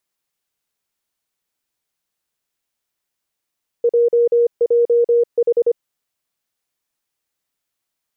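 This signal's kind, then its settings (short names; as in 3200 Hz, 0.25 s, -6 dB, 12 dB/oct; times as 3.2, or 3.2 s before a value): Morse "JJH" 25 wpm 473 Hz -10.5 dBFS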